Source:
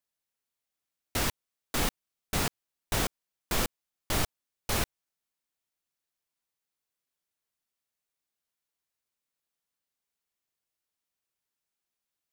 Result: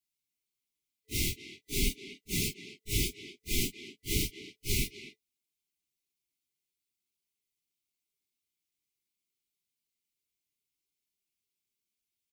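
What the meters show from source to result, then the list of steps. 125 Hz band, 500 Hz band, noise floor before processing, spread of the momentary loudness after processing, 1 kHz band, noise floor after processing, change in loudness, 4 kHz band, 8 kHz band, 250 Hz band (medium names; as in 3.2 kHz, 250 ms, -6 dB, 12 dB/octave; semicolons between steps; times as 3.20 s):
0.0 dB, -5.0 dB, under -85 dBFS, 13 LU, under -40 dB, under -85 dBFS, -1.5 dB, 0.0 dB, 0.0 dB, -0.5 dB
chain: phase randomisation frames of 100 ms; speakerphone echo 250 ms, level -10 dB; FFT band-reject 440–2000 Hz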